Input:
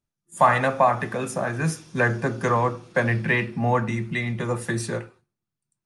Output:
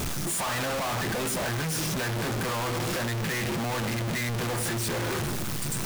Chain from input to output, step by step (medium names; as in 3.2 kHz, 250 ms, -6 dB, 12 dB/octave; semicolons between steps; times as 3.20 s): one-bit comparator; trim -4.5 dB